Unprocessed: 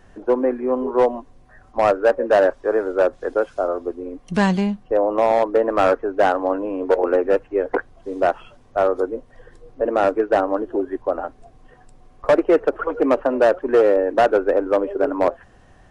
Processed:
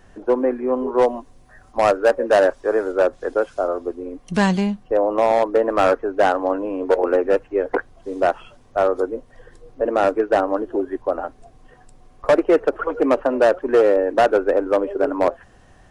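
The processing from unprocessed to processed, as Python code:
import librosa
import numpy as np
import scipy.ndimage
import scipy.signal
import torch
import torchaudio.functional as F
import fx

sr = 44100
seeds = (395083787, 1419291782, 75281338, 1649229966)

y = fx.high_shelf(x, sr, hz=4400.0, db=fx.steps((0.0, 3.5), (1.01, 10.5), (2.91, 5.0)))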